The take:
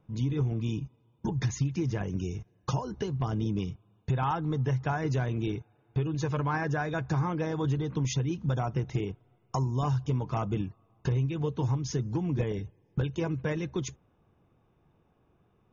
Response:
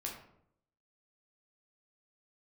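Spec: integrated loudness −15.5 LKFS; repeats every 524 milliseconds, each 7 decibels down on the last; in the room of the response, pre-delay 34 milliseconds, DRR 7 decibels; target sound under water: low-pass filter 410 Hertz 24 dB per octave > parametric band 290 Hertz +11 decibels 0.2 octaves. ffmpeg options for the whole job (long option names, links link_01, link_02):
-filter_complex "[0:a]aecho=1:1:524|1048|1572|2096|2620:0.447|0.201|0.0905|0.0407|0.0183,asplit=2[link_01][link_02];[1:a]atrim=start_sample=2205,adelay=34[link_03];[link_02][link_03]afir=irnorm=-1:irlink=0,volume=-6.5dB[link_04];[link_01][link_04]amix=inputs=2:normalize=0,lowpass=frequency=410:width=0.5412,lowpass=frequency=410:width=1.3066,equalizer=frequency=290:width_type=o:width=0.2:gain=11,volume=14dB"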